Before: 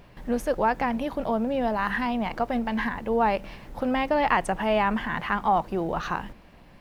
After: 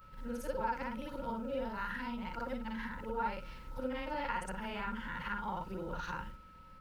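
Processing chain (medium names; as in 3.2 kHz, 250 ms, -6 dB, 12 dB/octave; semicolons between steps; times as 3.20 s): short-time spectra conjugated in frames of 126 ms; amplifier tone stack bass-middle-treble 6-0-2; compression 2.5:1, threshold -51 dBFS, peak gain reduction 6 dB; small resonant body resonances 530/920/1400 Hz, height 17 dB, ringing for 55 ms; whistle 1.3 kHz -67 dBFS; trim +11 dB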